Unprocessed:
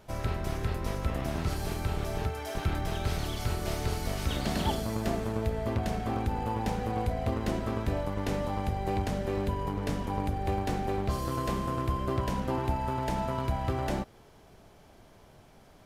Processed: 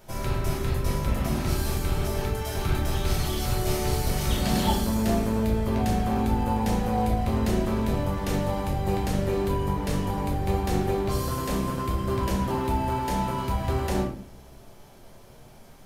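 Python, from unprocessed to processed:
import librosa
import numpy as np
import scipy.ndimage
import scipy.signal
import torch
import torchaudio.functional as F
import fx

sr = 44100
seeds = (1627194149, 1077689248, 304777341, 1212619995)

y = fx.high_shelf(x, sr, hz=6700.0, db=9.5)
y = fx.room_shoebox(y, sr, seeds[0], volume_m3=69.0, walls='mixed', distance_m=0.87)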